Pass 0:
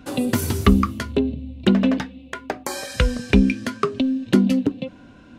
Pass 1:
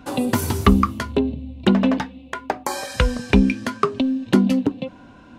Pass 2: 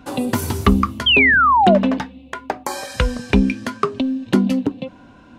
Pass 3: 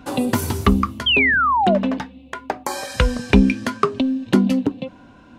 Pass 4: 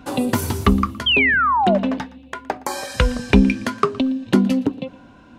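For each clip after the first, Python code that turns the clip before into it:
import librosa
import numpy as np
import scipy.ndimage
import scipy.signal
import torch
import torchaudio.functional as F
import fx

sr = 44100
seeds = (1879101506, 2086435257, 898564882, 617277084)

y1 = fx.peak_eq(x, sr, hz=910.0, db=7.5, octaves=0.77)
y2 = fx.spec_paint(y1, sr, seeds[0], shape='fall', start_s=1.06, length_s=0.72, low_hz=560.0, high_hz=3300.0, level_db=-13.0)
y3 = fx.rider(y2, sr, range_db=10, speed_s=2.0)
y3 = y3 * 10.0 ** (-2.0 / 20.0)
y4 = fx.echo_feedback(y3, sr, ms=116, feedback_pct=21, wet_db=-22)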